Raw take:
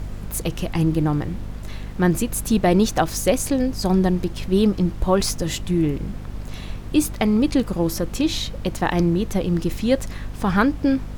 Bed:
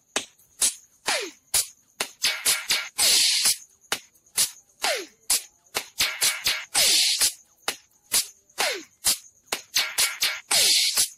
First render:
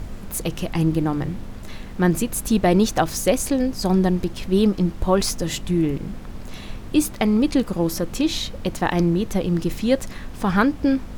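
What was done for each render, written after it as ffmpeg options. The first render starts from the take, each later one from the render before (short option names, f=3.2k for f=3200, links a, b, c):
-af "bandreject=f=50:t=h:w=4,bandreject=f=100:t=h:w=4,bandreject=f=150:t=h:w=4"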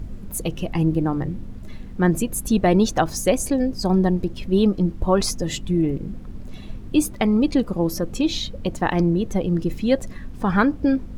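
-af "afftdn=nr=11:nf=-35"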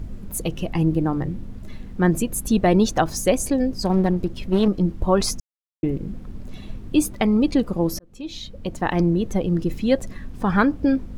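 -filter_complex "[0:a]asettb=1/sr,asplit=3[a][b][c];[a]atrim=end=3.824[d];[b]atrim=start=3.82:end=4.68,asetpts=PTS-STARTPTS,afade=t=in:d=0.004:c=qsin,afade=t=out:st=0.856:d=0.004:c=qsin,aeval=exprs='clip(val(0),-1,0.0891)':c=same[e];[c]atrim=start=4.676[f];[d][e]acrossfade=d=0.004:c1=hsin:c2=qsin[g];[g][f]acrossfade=d=0.004:c1=qsin:c2=hsin,asplit=4[h][i][j][k];[h]atrim=end=5.4,asetpts=PTS-STARTPTS,afade=t=out:st=5.396:d=0.004:c=hsin[l];[i]atrim=start=5.4:end=5.83,asetpts=PTS-STARTPTS,volume=0[m];[j]atrim=start=5.83:end=7.99,asetpts=PTS-STARTPTS,afade=t=in:d=0.004:c=hsin,afade=t=out:st=2.156:d=0.004:c=hsin[n];[k]atrim=start=7.99,asetpts=PTS-STARTPTS,afade=t=in:d=1.03[o];[l][m][n][o]concat=n=4:v=0:a=1"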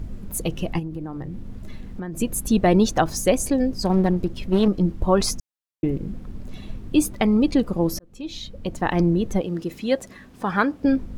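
-filter_complex "[0:a]asplit=3[a][b][c];[a]afade=t=out:st=0.78:d=0.02[d];[b]acompressor=threshold=-28dB:ratio=6:attack=3.2:release=140:knee=1:detection=peak,afade=t=in:st=0.78:d=0.02,afade=t=out:st=2.19:d=0.02[e];[c]afade=t=in:st=2.19:d=0.02[f];[d][e][f]amix=inputs=3:normalize=0,asettb=1/sr,asplit=3[g][h][i];[g]atrim=end=9.414[j];[h]atrim=start=9.41:end=10.85,asetpts=PTS-STARTPTS,afade=t=in:d=0.004:c=qsin,afade=t=out:st=1.436:d=0.004:c=qsin,highpass=f=370:p=1[k];[i]atrim=start=10.846[l];[j][k]acrossfade=d=0.004:c1=hsin:c2=qsin[m];[m][l]acrossfade=d=0.004:c1=qsin:c2=hsin"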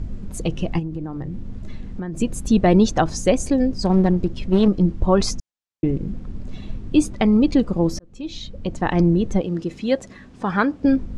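-af "lowpass=f=8.2k:w=0.5412,lowpass=f=8.2k:w=1.3066,lowshelf=f=340:g=4"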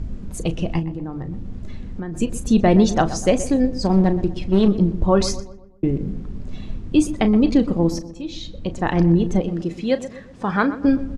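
-filter_complex "[0:a]asplit=2[a][b];[b]adelay=36,volume=-13dB[c];[a][c]amix=inputs=2:normalize=0,asplit=2[d][e];[e]adelay=123,lowpass=f=1.7k:p=1,volume=-13dB,asplit=2[f][g];[g]adelay=123,lowpass=f=1.7k:p=1,volume=0.46,asplit=2[h][i];[i]adelay=123,lowpass=f=1.7k:p=1,volume=0.46,asplit=2[j][k];[k]adelay=123,lowpass=f=1.7k:p=1,volume=0.46,asplit=2[l][m];[m]adelay=123,lowpass=f=1.7k:p=1,volume=0.46[n];[d][f][h][j][l][n]amix=inputs=6:normalize=0"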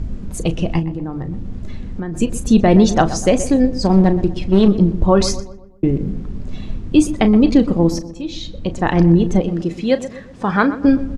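-af "volume=4dB,alimiter=limit=-1dB:level=0:latency=1"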